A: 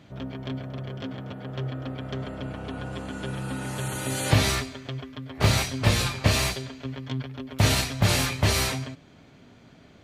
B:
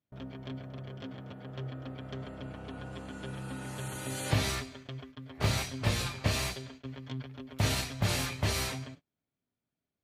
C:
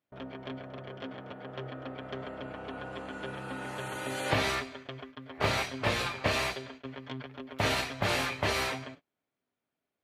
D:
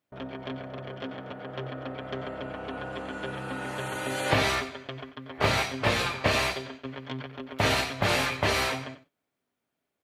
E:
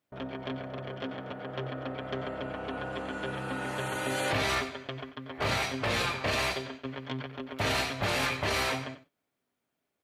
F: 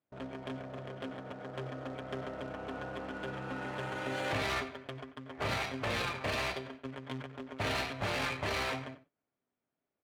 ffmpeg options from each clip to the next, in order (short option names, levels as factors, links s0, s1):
-af "agate=range=0.0316:threshold=0.00891:ratio=16:detection=peak,volume=0.398"
-af "bass=f=250:g=-13,treble=f=4000:g=-12,volume=2.11"
-af "aecho=1:1:90:0.188,volume=1.58"
-af "alimiter=limit=0.1:level=0:latency=1:release=13"
-af "acrusher=bits=3:mode=log:mix=0:aa=0.000001,adynamicsmooth=sensitivity=5.5:basefreq=2600,volume=0.596"